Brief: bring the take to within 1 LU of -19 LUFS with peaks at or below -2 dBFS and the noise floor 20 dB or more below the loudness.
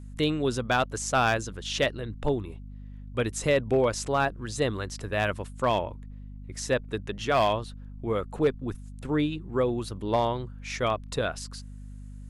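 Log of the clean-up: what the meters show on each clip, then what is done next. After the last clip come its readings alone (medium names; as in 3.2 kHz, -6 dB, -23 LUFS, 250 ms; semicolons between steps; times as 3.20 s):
clipped samples 0.3%; clipping level -15.5 dBFS; hum 50 Hz; highest harmonic 250 Hz; hum level -39 dBFS; loudness -28.5 LUFS; peak level -15.5 dBFS; loudness target -19.0 LUFS
-> clip repair -15.5 dBFS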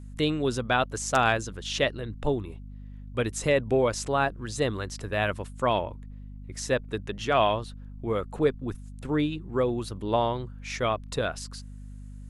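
clipped samples 0.0%; hum 50 Hz; highest harmonic 250 Hz; hum level -39 dBFS
-> de-hum 50 Hz, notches 5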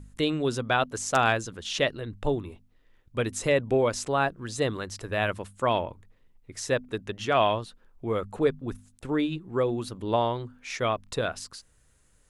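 hum not found; loudness -28.0 LUFS; peak level -7.5 dBFS; loudness target -19.0 LUFS
-> trim +9 dB; peak limiter -2 dBFS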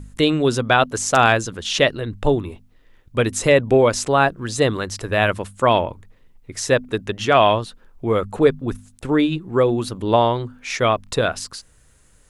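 loudness -19.5 LUFS; peak level -2.0 dBFS; noise floor -54 dBFS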